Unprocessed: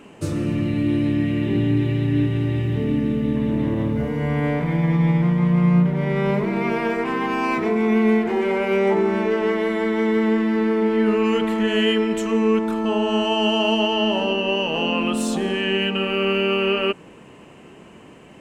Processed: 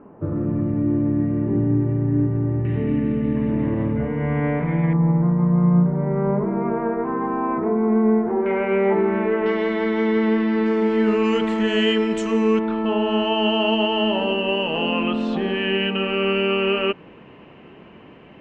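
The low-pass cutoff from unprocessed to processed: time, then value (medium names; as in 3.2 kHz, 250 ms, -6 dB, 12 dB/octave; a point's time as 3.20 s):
low-pass 24 dB/octave
1.3 kHz
from 2.65 s 2.4 kHz
from 4.93 s 1.3 kHz
from 8.46 s 2.4 kHz
from 9.46 s 4.8 kHz
from 10.66 s 7.6 kHz
from 12.59 s 3.5 kHz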